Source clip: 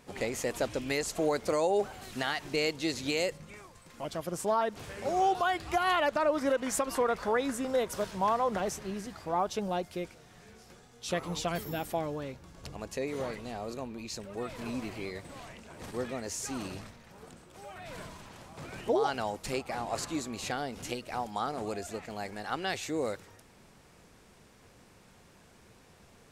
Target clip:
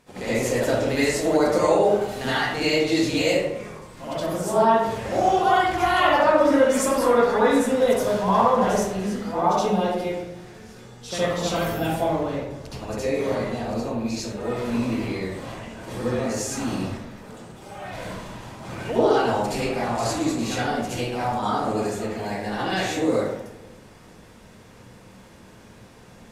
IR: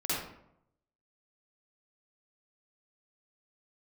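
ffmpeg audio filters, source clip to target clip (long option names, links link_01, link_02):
-filter_complex "[0:a]asettb=1/sr,asplit=3[link_01][link_02][link_03];[link_01]atrim=end=22.154[link_04];[link_02]atrim=start=22.15:end=22.68,asetpts=PTS-STARTPTS,afade=type=in:duration=0.004:curve=qsin,afade=type=out:start_time=0.526:duration=0.004:curve=qsin,bandreject=frequency=1300:width=5.5[link_05];[link_03]atrim=start=22.676[link_06];[link_04][link_05]acrossfade=duration=0.004:curve1=hsin:curve2=qsin[link_07];[link_07][link_06]acrossfade=duration=0.004:curve1=qsin:curve2=hsin[link_08];[1:a]atrim=start_sample=2205,asetrate=31752,aresample=44100[link_09];[link_08][link_09]afir=irnorm=-1:irlink=0"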